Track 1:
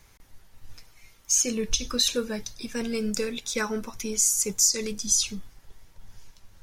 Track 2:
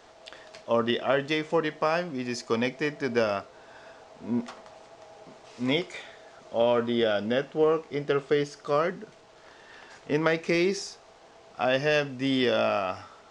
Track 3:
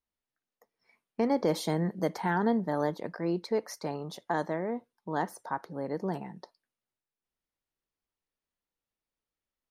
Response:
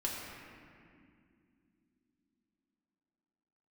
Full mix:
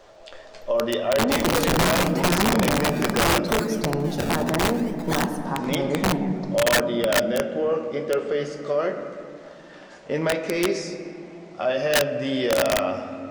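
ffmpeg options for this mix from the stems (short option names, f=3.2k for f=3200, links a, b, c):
-filter_complex "[0:a]acrusher=samples=29:mix=1:aa=0.000001:lfo=1:lforange=29:lforate=0.75,volume=-8dB,asplit=2[a][b];[b]volume=-10.5dB[c];[1:a]equalizer=f=560:w=5.1:g=12.5,alimiter=limit=-14.5dB:level=0:latency=1:release=11,flanger=delay=9:depth=7.4:regen=45:speed=0.86:shape=triangular,volume=1dB,asplit=2[d][e];[e]volume=-5.5dB[f];[2:a]lowshelf=f=400:g=12,acompressor=threshold=-23dB:ratio=2.5,volume=1dB,asplit=2[g][h];[h]volume=-3.5dB[i];[d][g]amix=inputs=2:normalize=0,alimiter=limit=-19.5dB:level=0:latency=1:release=28,volume=0dB[j];[3:a]atrim=start_sample=2205[k];[c][f][i]amix=inputs=3:normalize=0[l];[l][k]afir=irnorm=-1:irlink=0[m];[a][j][m]amix=inputs=3:normalize=0,aeval=exprs='(mod(4.73*val(0)+1,2)-1)/4.73':c=same"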